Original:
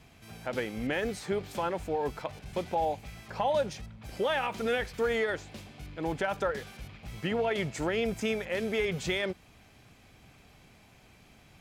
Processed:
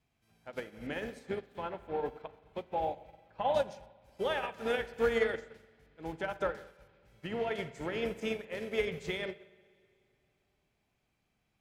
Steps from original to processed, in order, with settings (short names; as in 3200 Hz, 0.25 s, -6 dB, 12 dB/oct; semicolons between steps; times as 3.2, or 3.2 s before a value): 1.46–3.54 band shelf 7800 Hz -10.5 dB; spring tank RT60 2.6 s, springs 43/58 ms, chirp 60 ms, DRR 5 dB; upward expander 2.5:1, over -39 dBFS